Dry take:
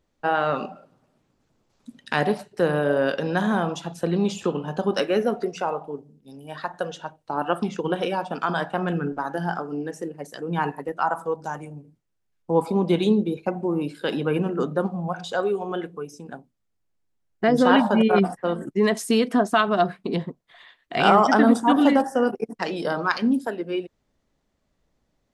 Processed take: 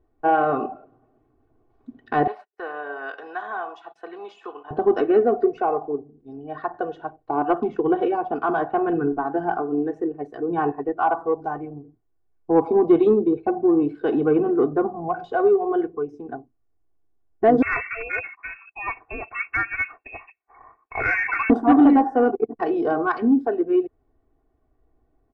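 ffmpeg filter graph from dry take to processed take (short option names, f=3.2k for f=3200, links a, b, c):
-filter_complex "[0:a]asettb=1/sr,asplit=3[a][b][c];[a]atrim=end=2.274[d];[b]atrim=start=2.27:end=4.71,asetpts=PTS-STARTPTS,afade=t=in:d=0.004:c=qsin,afade=t=out:st=2.436:d=0.004:c=qsin,highpass=1.2k,agate=range=-27dB:threshold=-50dB:ratio=16:release=100:detection=peak[e];[c]atrim=start=4.706[f];[d][e]acrossfade=d=0.004:c1=hsin:c2=qsin[g];[g][f]acrossfade=d=0.004:c1=qsin:c2=hsin,asettb=1/sr,asplit=3[h][i][j];[h]atrim=end=17.624[k];[i]atrim=start=17.62:end=21.5,asetpts=PTS-STARTPTS,afade=t=in:d=0.004:c=qsin,afade=t=out:st=3.876:d=0.004:c=qsin,highpass=380,lowpass=f=2.5k:t=q:w=0.5098,lowpass=f=2.5k:t=q:w=0.6013,lowpass=f=2.5k:t=q:w=0.9,lowpass=f=2.5k:t=q:w=2.563,afreqshift=-2900[l];[j]atrim=start=21.496[m];[k][l]acrossfade=d=0.004:c1=hsin:c2=qsin[n];[n][m]acrossfade=d=0.004:c1=qsin:c2=hsin,lowpass=1k,aecho=1:1:2.7:1,acontrast=59,volume=-3.5dB"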